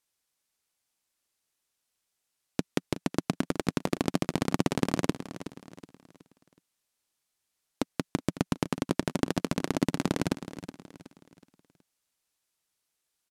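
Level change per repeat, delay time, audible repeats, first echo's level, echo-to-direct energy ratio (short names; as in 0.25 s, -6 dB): -8.0 dB, 0.371 s, 3, -13.0 dB, -12.5 dB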